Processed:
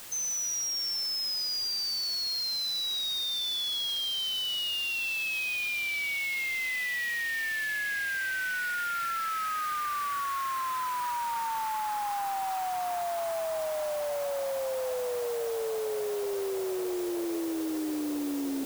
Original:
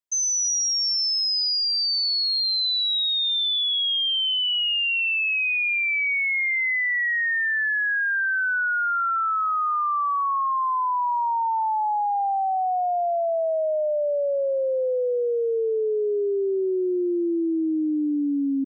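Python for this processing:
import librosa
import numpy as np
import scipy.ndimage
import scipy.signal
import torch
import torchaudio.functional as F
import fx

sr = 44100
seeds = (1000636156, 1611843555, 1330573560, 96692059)

y = fx.echo_diffused(x, sr, ms=1421, feedback_pct=70, wet_db=-13.5)
y = np.clip(10.0 ** (19.5 / 20.0) * y, -1.0, 1.0) / 10.0 ** (19.5 / 20.0)
y = fx.quant_dither(y, sr, seeds[0], bits=6, dither='triangular')
y = y * librosa.db_to_amplitude(-8.5)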